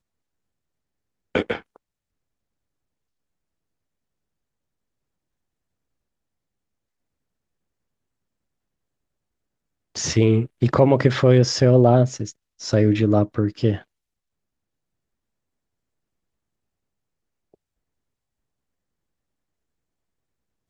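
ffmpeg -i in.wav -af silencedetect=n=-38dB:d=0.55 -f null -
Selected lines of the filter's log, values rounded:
silence_start: 0.00
silence_end: 1.35 | silence_duration: 1.35
silence_start: 1.76
silence_end: 9.95 | silence_duration: 8.19
silence_start: 13.81
silence_end: 20.69 | silence_duration: 6.88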